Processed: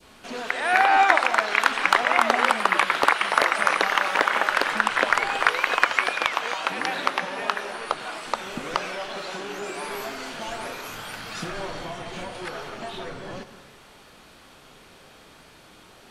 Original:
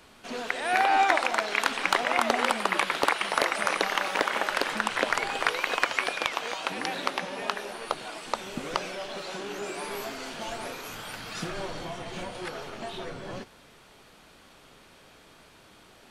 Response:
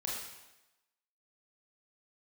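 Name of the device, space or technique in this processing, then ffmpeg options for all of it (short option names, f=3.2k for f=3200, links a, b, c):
ducked reverb: -filter_complex "[0:a]asplit=3[a][b][c];[1:a]atrim=start_sample=2205[d];[b][d]afir=irnorm=-1:irlink=0[e];[c]apad=whole_len=710124[f];[e][f]sidechaincompress=threshold=-43dB:ratio=8:attack=16:release=208,volume=-4dB[g];[a][g]amix=inputs=2:normalize=0,asettb=1/sr,asplit=3[h][i][j];[h]atrim=end=7.604[k];[i]atrim=start=7.6:end=8,asetpts=PTS-STARTPTS,afade=t=in:d=0.004:c=qsin,afade=t=out:st=0.396:d=0.004:c=qsin,lowpass=f=11k:w=0.5412,lowpass=f=11k:w=1.3066[l];[j]atrim=start=7.996[m];[k][l]acrossfade=d=0.004:c1=hsin:c2=qsin[n];[n][m]acrossfade=d=0.004:c1=qsin:c2=hsin,adynamicequalizer=threshold=0.0126:dfrequency=1400:dqfactor=0.73:tfrequency=1400:tqfactor=0.73:attack=5:release=100:ratio=0.375:range=3.5:mode=boostabove:tftype=bell"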